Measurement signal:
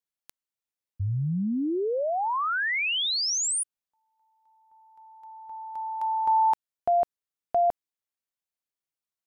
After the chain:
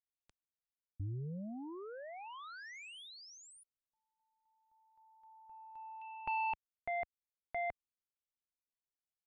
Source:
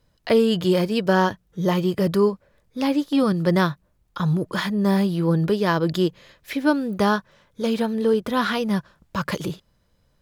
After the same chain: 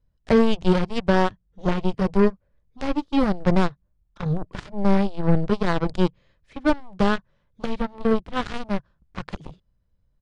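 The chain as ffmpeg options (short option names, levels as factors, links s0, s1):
-af "aeval=exprs='0.473*(cos(1*acos(clip(val(0)/0.473,-1,1)))-cos(1*PI/2))+0.0841*(cos(7*acos(clip(val(0)/0.473,-1,1)))-cos(7*PI/2))':c=same,aemphasis=mode=reproduction:type=bsi,aresample=22050,aresample=44100,volume=0.708"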